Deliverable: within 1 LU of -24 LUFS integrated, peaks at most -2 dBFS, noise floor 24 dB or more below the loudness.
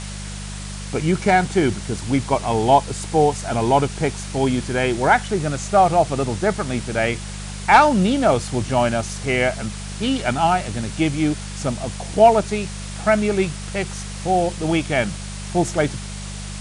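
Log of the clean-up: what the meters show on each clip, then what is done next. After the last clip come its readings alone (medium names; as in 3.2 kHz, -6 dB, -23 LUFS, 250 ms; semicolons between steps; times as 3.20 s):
hum 50 Hz; highest harmonic 200 Hz; hum level -29 dBFS; noise floor -31 dBFS; noise floor target -44 dBFS; loudness -20.0 LUFS; peak level -2.0 dBFS; loudness target -24.0 LUFS
-> de-hum 50 Hz, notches 4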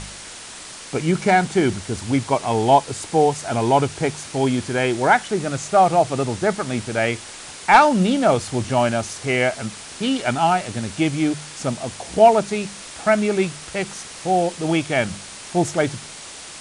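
hum not found; noise floor -38 dBFS; noise floor target -44 dBFS
-> noise reduction 6 dB, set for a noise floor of -38 dBFS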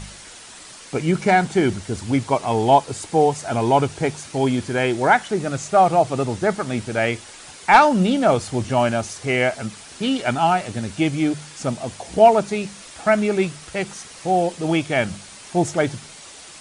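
noise floor -41 dBFS; noise floor target -44 dBFS
-> noise reduction 6 dB, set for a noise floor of -41 dBFS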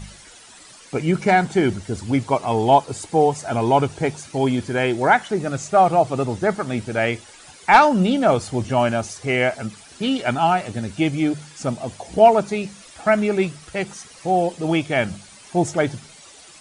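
noise floor -45 dBFS; loudness -20.0 LUFS; peak level -2.5 dBFS; loudness target -24.0 LUFS
-> trim -4 dB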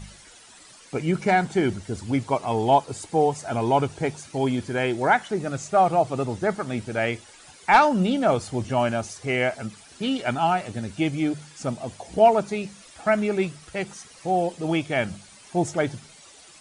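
loudness -24.0 LUFS; peak level -6.5 dBFS; noise floor -49 dBFS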